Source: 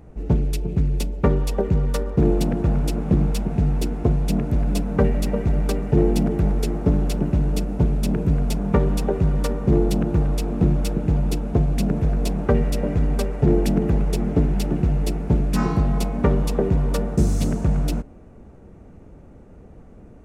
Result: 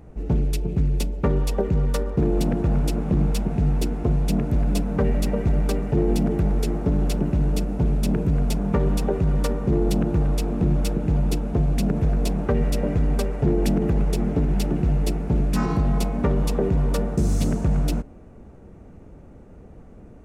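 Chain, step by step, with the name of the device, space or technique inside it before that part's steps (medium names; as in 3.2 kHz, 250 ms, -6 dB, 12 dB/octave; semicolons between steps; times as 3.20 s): clipper into limiter (hard clipper -8 dBFS, distortion -34 dB; peak limiter -12 dBFS, peak gain reduction 4 dB)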